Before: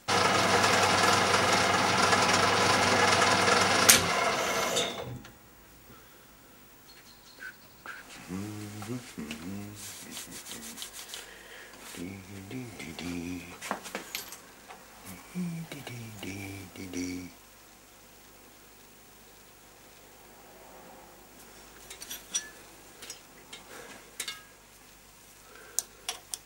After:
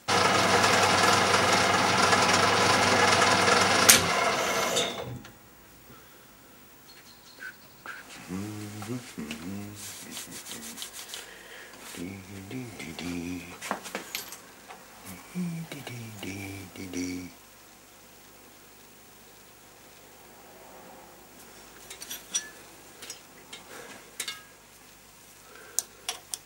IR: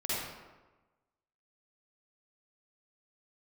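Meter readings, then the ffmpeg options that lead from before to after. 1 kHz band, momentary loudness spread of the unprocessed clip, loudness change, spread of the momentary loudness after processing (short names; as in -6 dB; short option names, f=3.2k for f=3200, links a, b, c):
+2.0 dB, 22 LU, +2.0 dB, 22 LU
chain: -af "highpass=58,volume=2dB"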